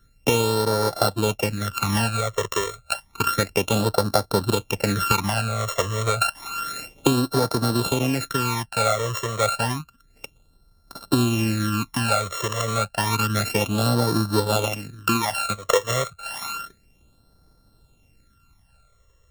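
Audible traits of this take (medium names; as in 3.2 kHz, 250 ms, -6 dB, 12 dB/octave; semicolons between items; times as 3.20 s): a buzz of ramps at a fixed pitch in blocks of 32 samples; phasing stages 12, 0.3 Hz, lowest notch 250–2600 Hz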